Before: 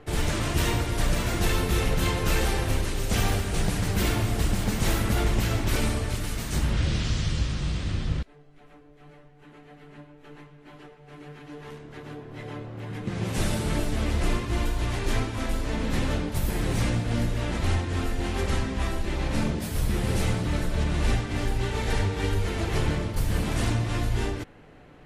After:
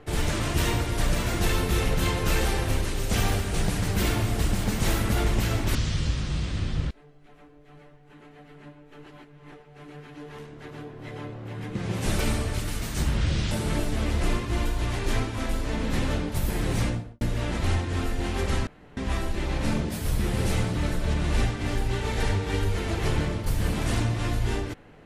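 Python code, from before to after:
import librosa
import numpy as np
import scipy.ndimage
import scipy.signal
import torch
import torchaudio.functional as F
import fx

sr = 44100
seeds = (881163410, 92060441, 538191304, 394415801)

y = fx.studio_fade_out(x, sr, start_s=16.79, length_s=0.42)
y = fx.edit(y, sr, fx.move(start_s=5.75, length_s=1.32, to_s=13.51),
    fx.reverse_span(start_s=10.38, length_s=0.46),
    fx.insert_room_tone(at_s=18.67, length_s=0.3), tone=tone)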